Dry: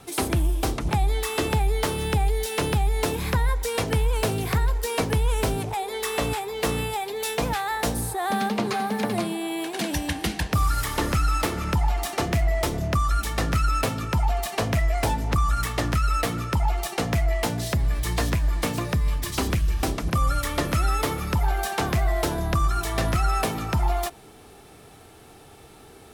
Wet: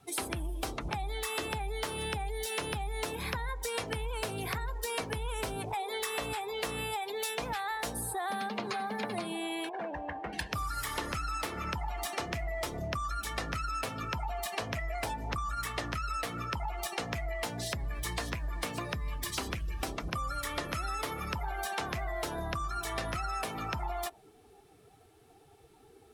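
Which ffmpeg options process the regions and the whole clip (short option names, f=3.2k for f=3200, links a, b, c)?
-filter_complex "[0:a]asettb=1/sr,asplit=3[a][b][c];[a]atrim=end=9.694[d];[b]atrim=start=9.69:end=10.33,asetpts=PTS-STARTPTS,afade=t=in:d=0.004:c=qsin,afade=t=out:st=0.636:d=0.004:c=qsin,lowpass=1.3k,lowshelf=f=400:t=q:w=1.5:g=-6.5,volume=27.5dB,asoftclip=hard,volume=-27.5dB[e];[c]atrim=start=10.326[f];[d][e]acrossfade=d=0.004:c1=hsin:c2=qsin[g];[g][f]acrossfade=d=0.004:c1=qsin:c2=hsin,afftdn=nr=15:nf=-40,lowshelf=f=450:g=-9.5,acompressor=threshold=-32dB:ratio=6"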